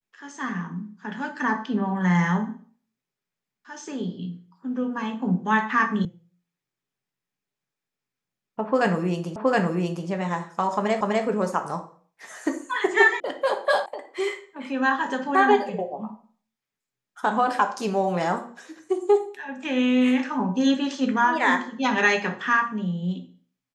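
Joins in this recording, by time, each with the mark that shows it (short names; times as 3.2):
6.05 sound cut off
9.36 repeat of the last 0.72 s
11.01 repeat of the last 0.25 s
13.2 sound cut off
13.86 sound cut off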